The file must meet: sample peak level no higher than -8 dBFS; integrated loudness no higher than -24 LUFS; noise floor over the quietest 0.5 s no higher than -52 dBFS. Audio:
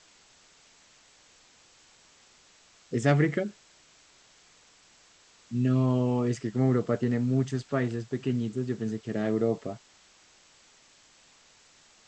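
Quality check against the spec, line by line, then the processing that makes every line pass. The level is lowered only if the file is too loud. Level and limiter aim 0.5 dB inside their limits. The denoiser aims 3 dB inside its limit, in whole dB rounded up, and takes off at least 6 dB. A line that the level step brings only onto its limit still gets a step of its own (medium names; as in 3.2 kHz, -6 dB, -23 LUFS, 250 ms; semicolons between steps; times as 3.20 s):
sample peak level -10.5 dBFS: pass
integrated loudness -28.5 LUFS: pass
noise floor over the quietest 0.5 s -59 dBFS: pass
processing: none needed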